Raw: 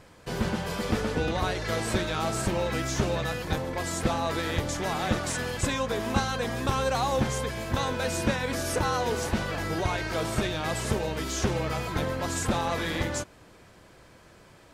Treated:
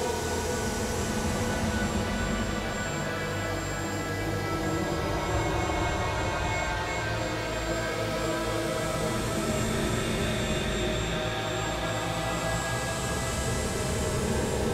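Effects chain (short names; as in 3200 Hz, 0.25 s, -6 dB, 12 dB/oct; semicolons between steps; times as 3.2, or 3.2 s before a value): whine 7400 Hz -47 dBFS; Paulstretch 8×, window 0.50 s, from 9.14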